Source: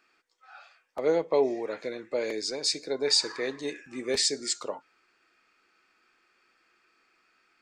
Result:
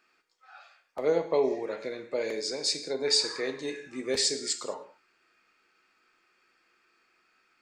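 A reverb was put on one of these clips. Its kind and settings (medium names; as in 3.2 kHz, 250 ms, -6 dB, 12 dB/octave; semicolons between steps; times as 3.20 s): gated-style reverb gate 230 ms falling, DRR 7 dB; trim -1.5 dB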